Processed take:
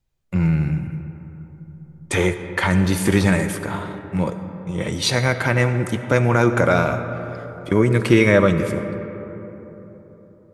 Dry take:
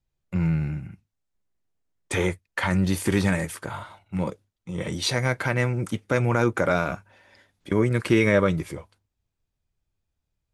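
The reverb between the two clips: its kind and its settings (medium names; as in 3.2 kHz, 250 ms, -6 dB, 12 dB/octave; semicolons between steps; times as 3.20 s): algorithmic reverb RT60 3.9 s, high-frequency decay 0.35×, pre-delay 30 ms, DRR 9 dB; trim +5 dB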